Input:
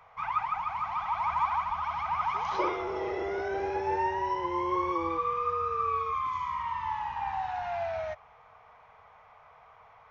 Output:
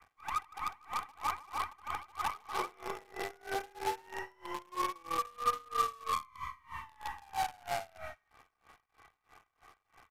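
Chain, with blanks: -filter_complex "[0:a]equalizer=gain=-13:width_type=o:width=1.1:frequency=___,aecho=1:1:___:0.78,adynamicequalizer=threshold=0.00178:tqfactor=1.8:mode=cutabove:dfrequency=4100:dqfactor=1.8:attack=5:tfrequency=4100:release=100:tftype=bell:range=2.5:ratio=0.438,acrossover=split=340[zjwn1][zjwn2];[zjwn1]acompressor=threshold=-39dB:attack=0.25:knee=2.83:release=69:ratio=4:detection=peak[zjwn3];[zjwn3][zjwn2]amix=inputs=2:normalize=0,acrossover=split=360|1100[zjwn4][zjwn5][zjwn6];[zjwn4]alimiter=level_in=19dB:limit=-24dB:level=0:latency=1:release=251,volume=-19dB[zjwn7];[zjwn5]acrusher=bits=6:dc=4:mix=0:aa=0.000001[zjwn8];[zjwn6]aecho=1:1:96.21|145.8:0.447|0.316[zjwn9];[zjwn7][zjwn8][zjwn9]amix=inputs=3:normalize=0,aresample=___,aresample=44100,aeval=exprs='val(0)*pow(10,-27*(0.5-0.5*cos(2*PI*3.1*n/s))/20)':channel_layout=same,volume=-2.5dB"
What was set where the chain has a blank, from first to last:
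180, 2.6, 32000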